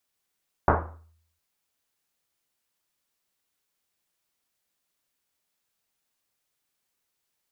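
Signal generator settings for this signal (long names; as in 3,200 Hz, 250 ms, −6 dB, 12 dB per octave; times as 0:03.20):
drum after Risset length 0.71 s, pitch 81 Hz, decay 0.73 s, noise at 770 Hz, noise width 1,200 Hz, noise 65%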